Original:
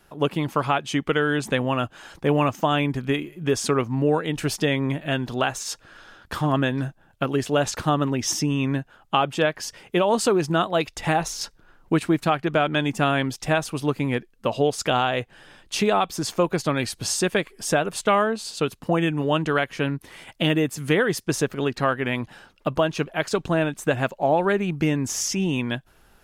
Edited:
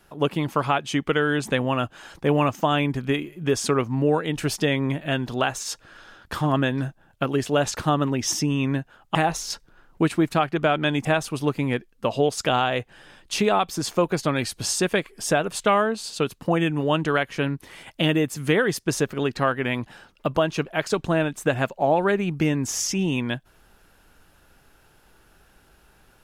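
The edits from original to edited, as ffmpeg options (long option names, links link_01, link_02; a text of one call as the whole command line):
ffmpeg -i in.wav -filter_complex "[0:a]asplit=3[link_01][link_02][link_03];[link_01]atrim=end=9.152[link_04];[link_02]atrim=start=11.058:end=12.962[link_05];[link_03]atrim=start=13.458[link_06];[link_04][link_05]acrossfade=duration=0.004:curve1=hsin:curve2=hsin[link_07];[link_07][link_06]acrossfade=duration=0.004:curve1=hsin:curve2=hsin" out.wav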